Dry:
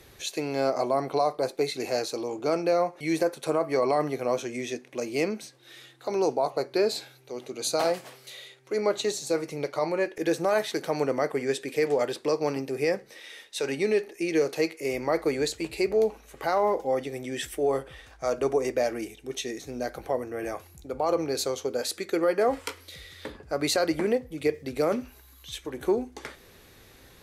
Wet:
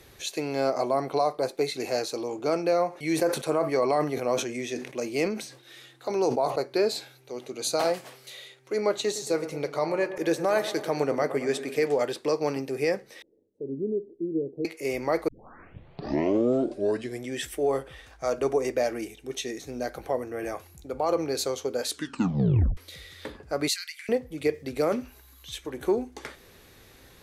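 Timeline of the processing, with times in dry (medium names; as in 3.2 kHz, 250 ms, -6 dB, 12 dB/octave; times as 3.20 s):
2.88–6.56 s: decay stretcher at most 95 dB/s
8.93–11.86 s: feedback echo behind a low-pass 112 ms, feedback 61%, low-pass 1.9 kHz, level -12.5 dB
13.22–14.65 s: inverse Chebyshev low-pass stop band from 1.3 kHz, stop band 60 dB
15.28 s: tape start 2.01 s
21.85 s: tape stop 0.92 s
23.68–24.09 s: steep high-pass 1.9 kHz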